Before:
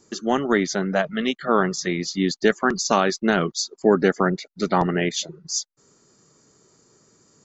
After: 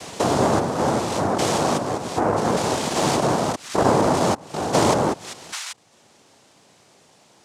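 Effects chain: stepped spectrum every 0.2 s; treble ducked by the level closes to 1200 Hz, closed at -23 dBFS; noise vocoder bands 2; gain +5 dB

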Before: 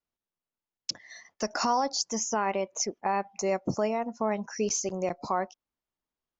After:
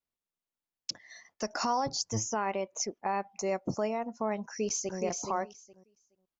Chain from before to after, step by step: 1.86–2.31 octaver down 1 oct, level +4 dB; 4.42–4.99 echo throw 0.42 s, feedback 15%, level -5 dB; gain -3.5 dB

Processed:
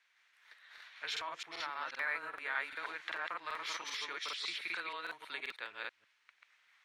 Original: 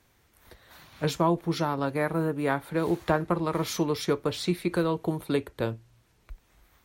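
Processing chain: reverse delay 0.159 s, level 0 dB; limiter -15.5 dBFS, peak gain reduction 8 dB; ladder band-pass 2400 Hz, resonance 30%; frequency shift -13 Hz; crackling interface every 0.39 s, samples 2048, repeat, from 0.73; gain +8 dB

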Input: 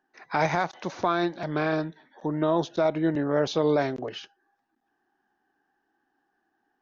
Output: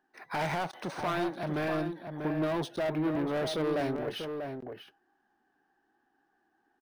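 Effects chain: soft clip -27.5 dBFS, distortion -7 dB; outdoor echo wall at 110 m, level -6 dB; decimation joined by straight lines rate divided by 3×

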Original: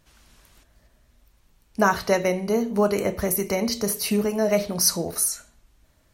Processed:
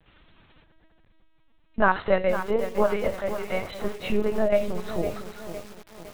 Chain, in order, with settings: 1.82–3.83 HPF 190 Hz -> 600 Hz 24 dB/oct; LPC vocoder at 8 kHz pitch kept; lo-fi delay 0.508 s, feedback 55%, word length 6-bit, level -10 dB

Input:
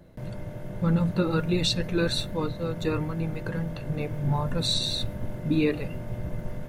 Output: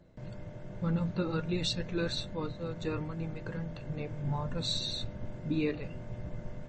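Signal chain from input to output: gain -7 dB; MP3 32 kbps 24000 Hz

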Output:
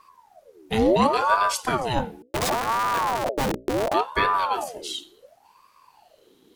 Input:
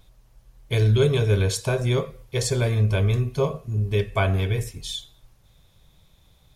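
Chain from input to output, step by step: 2.22–3.94 Schmitt trigger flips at -26 dBFS; notches 60/120/180/240/300 Hz; ring modulator with a swept carrier 710 Hz, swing 55%, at 0.7 Hz; gain +2.5 dB

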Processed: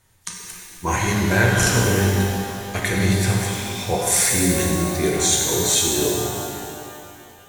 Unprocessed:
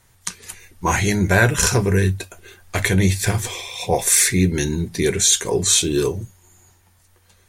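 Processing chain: shimmer reverb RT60 2.5 s, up +12 st, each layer -8 dB, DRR -1.5 dB; gain -5 dB

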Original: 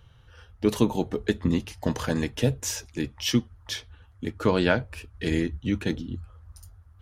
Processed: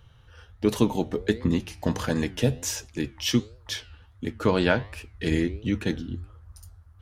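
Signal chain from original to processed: flange 1.4 Hz, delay 7.7 ms, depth 5.6 ms, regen +89%; gain +5 dB

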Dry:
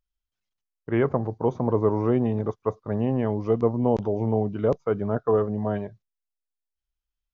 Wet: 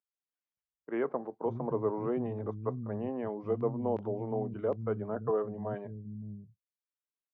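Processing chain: BPF 110–2300 Hz; bands offset in time highs, lows 0.57 s, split 210 Hz; gain -8 dB

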